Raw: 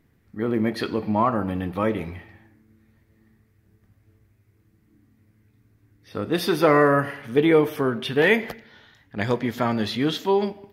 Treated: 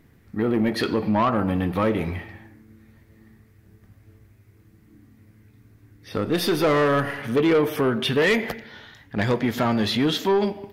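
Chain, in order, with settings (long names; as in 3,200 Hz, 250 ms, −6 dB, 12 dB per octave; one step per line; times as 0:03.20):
0:06.16–0:07.19: gain on one half-wave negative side −3 dB
in parallel at +2.5 dB: downward compressor, threshold −27 dBFS, peak gain reduction 13.5 dB
on the sum: soft clipping −14 dBFS, distortion −12 dB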